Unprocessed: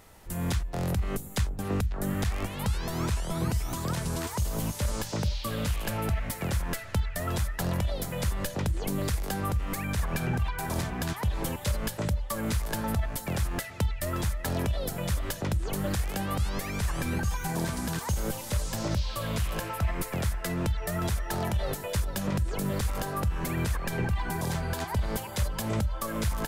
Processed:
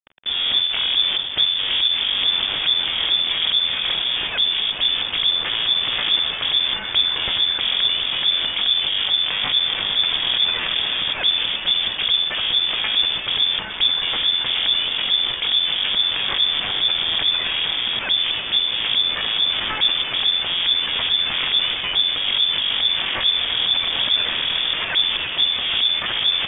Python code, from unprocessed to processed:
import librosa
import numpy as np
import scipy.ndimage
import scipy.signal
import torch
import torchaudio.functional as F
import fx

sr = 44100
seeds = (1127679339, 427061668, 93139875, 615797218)

p1 = fx.self_delay(x, sr, depth_ms=0.96)
p2 = fx.over_compress(p1, sr, threshold_db=-38.0, ratio=-1.0)
p3 = p1 + F.gain(torch.from_numpy(p2), -3.0).numpy()
p4 = fx.quant_dither(p3, sr, seeds[0], bits=6, dither='none')
p5 = fx.freq_invert(p4, sr, carrier_hz=3500)
y = F.gain(torch.from_numpy(p5), 6.5).numpy()